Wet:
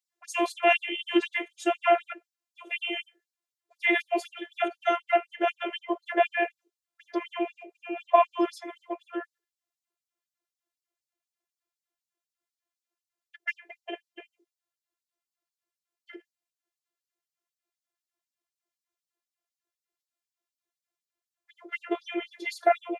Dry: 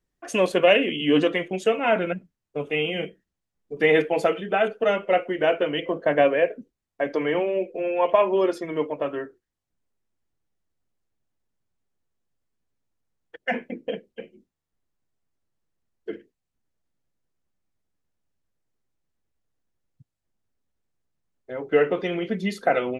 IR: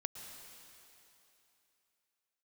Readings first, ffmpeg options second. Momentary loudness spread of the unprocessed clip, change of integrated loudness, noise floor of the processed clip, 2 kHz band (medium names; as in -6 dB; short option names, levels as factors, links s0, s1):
16 LU, -5.0 dB, under -85 dBFS, -3.0 dB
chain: -af "afftfilt=real='hypot(re,im)*cos(PI*b)':imag='0':win_size=512:overlap=0.75,afftfilt=real='re*gte(b*sr/1024,290*pow(4000/290,0.5+0.5*sin(2*PI*4*pts/sr)))':imag='im*gte(b*sr/1024,290*pow(4000/290,0.5+0.5*sin(2*PI*4*pts/sr)))':win_size=1024:overlap=0.75,volume=1.26"